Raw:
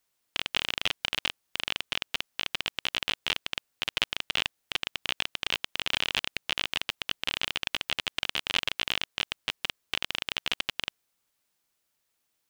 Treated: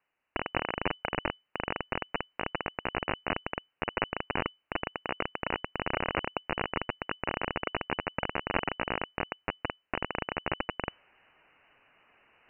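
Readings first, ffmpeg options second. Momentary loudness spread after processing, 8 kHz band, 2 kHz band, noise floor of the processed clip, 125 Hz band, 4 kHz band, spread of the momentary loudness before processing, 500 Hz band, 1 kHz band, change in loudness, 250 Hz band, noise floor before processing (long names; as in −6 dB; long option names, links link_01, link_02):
5 LU, below −40 dB, −2.5 dB, −82 dBFS, +8.0 dB, −14.0 dB, 5 LU, +9.5 dB, +6.5 dB, −4.0 dB, +9.0 dB, −78 dBFS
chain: -af "areverse,acompressor=mode=upward:threshold=-41dB:ratio=2.5,areverse,lowpass=frequency=2600:width_type=q:width=0.5098,lowpass=frequency=2600:width_type=q:width=0.6013,lowpass=frequency=2600:width_type=q:width=0.9,lowpass=frequency=2600:width_type=q:width=2.563,afreqshift=-3000,volume=3dB"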